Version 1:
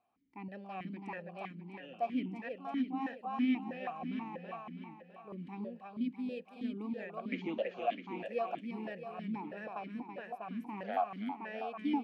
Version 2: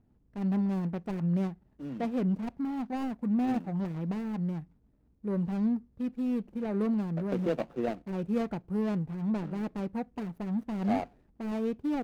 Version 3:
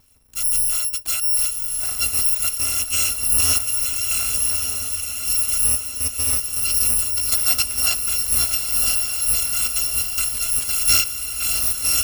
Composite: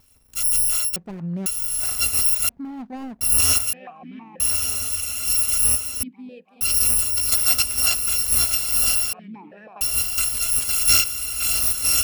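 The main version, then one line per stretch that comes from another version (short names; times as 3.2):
3
0.96–1.46 from 2
2.49–3.21 from 2
3.73–4.4 from 1
6.03–6.61 from 1
9.13–9.81 from 1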